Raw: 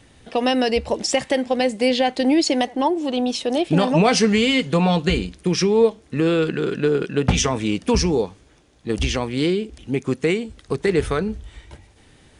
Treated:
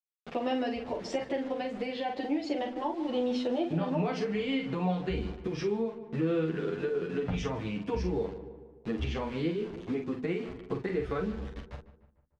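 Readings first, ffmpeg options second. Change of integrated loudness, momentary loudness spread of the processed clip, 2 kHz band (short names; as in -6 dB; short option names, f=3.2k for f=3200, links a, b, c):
-12.5 dB, 6 LU, -14.5 dB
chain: -filter_complex "[0:a]acrusher=bits=5:mix=0:aa=0.000001,alimiter=limit=-13dB:level=0:latency=1:release=450,lowpass=4.1k,highshelf=f=3k:g=-10,bandreject=f=50:t=h:w=6,bandreject=f=100:t=h:w=6,bandreject=f=150:t=h:w=6,bandreject=f=200:t=h:w=6,bandreject=f=250:t=h:w=6,asplit=2[a][b];[b]adelay=44,volume=-6.5dB[c];[a][c]amix=inputs=2:normalize=0,asplit=2[d][e];[e]adelay=149,lowpass=f=2.3k:p=1,volume=-16dB,asplit=2[f][g];[g]adelay=149,lowpass=f=2.3k:p=1,volume=0.54,asplit=2[h][i];[i]adelay=149,lowpass=f=2.3k:p=1,volume=0.54,asplit=2[j][k];[k]adelay=149,lowpass=f=2.3k:p=1,volume=0.54,asplit=2[l][m];[m]adelay=149,lowpass=f=2.3k:p=1,volume=0.54[n];[f][h][j][l][n]amix=inputs=5:normalize=0[o];[d][o]amix=inputs=2:normalize=0,acompressor=threshold=-27dB:ratio=2.5,asplit=2[p][q];[q]adelay=9.8,afreqshift=0.32[r];[p][r]amix=inputs=2:normalize=1"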